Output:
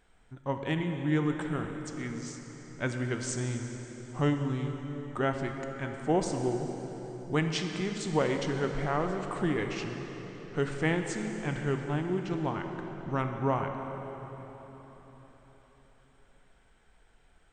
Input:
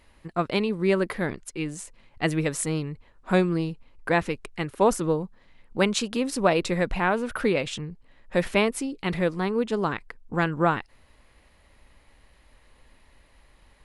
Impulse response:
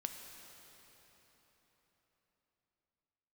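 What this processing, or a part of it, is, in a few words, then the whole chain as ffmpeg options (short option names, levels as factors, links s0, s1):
slowed and reverbed: -filter_complex "[0:a]asetrate=34839,aresample=44100[s0];[1:a]atrim=start_sample=2205[s1];[s0][s1]afir=irnorm=-1:irlink=0,volume=0.596"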